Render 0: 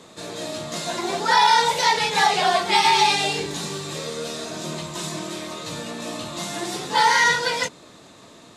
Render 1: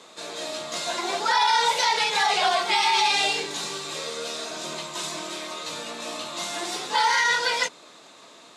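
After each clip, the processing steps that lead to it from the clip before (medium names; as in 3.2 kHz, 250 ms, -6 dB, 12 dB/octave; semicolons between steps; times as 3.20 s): frequency weighting A; peak limiter -12 dBFS, peak gain reduction 6.5 dB; band-stop 1.8 kHz, Q 19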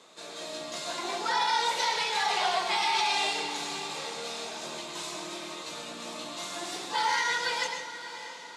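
echo that smears into a reverb 623 ms, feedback 53%, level -12 dB; on a send at -5.5 dB: reverberation RT60 0.60 s, pre-delay 102 ms; on the sum: trim -7 dB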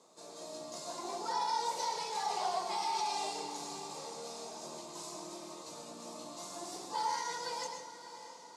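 high-order bell 2.3 kHz -12 dB; trim -5.5 dB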